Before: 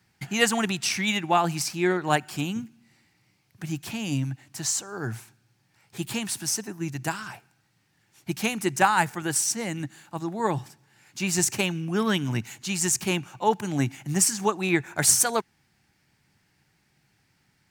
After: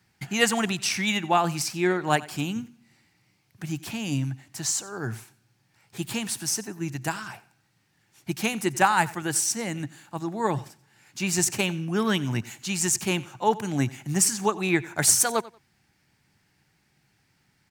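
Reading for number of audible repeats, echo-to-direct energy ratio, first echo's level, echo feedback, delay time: 2, -19.5 dB, -19.5 dB, 22%, 91 ms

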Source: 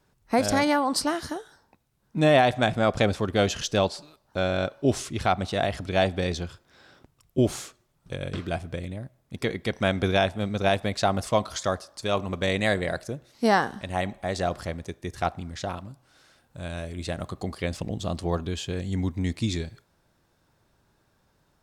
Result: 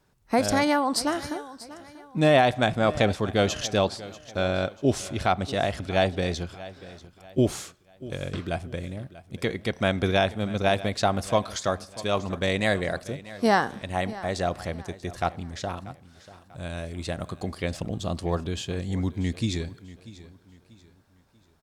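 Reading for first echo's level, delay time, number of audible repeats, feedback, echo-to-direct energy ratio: -17.5 dB, 639 ms, 2, 36%, -17.0 dB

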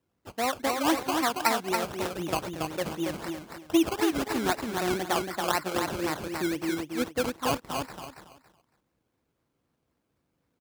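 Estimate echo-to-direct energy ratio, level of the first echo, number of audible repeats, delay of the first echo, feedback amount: -4.0 dB, -4.5 dB, 3, 279 ms, 25%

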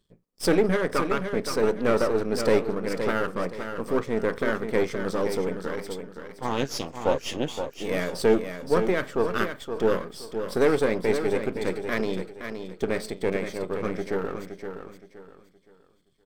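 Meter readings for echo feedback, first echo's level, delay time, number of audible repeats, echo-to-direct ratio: 30%, -8.0 dB, 519 ms, 3, -7.5 dB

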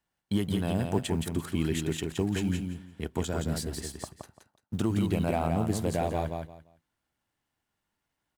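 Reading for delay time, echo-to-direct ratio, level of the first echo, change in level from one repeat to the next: 171 ms, -5.0 dB, -5.0 dB, -13.5 dB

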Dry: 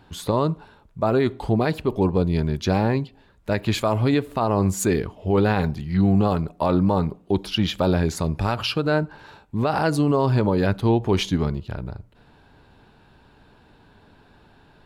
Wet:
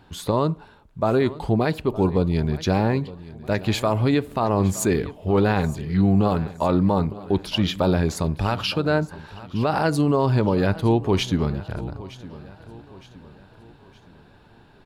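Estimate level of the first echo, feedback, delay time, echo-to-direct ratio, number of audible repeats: -18.0 dB, 44%, 915 ms, -17.0 dB, 3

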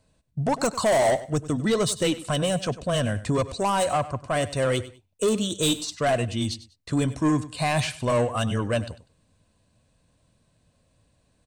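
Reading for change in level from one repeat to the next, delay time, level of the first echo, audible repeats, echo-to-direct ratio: -12.5 dB, 98 ms, -16.0 dB, 2, -16.0 dB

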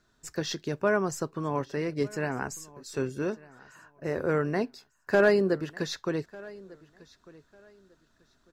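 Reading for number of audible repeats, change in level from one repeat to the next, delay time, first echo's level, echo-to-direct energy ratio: 2, -12.5 dB, 1198 ms, -22.0 dB, -22.0 dB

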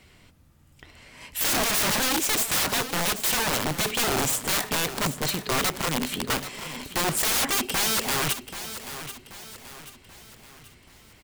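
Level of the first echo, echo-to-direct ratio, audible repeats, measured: -12.0 dB, -11.0 dB, 4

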